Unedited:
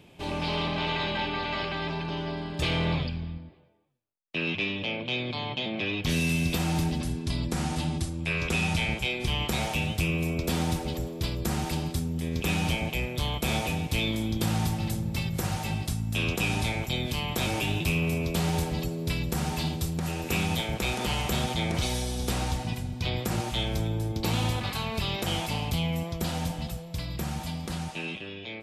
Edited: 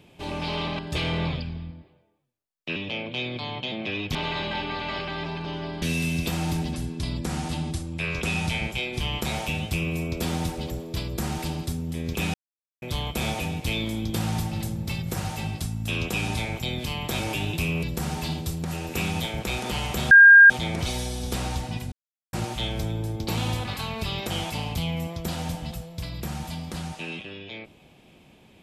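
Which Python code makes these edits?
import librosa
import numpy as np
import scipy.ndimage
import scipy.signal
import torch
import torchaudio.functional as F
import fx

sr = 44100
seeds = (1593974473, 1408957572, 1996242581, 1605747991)

y = fx.edit(x, sr, fx.move(start_s=0.79, length_s=1.67, to_s=6.09),
    fx.cut(start_s=4.43, length_s=0.27),
    fx.silence(start_s=12.61, length_s=0.48),
    fx.cut(start_s=18.1, length_s=1.08),
    fx.insert_tone(at_s=21.46, length_s=0.39, hz=1610.0, db=-7.0),
    fx.silence(start_s=22.88, length_s=0.41), tone=tone)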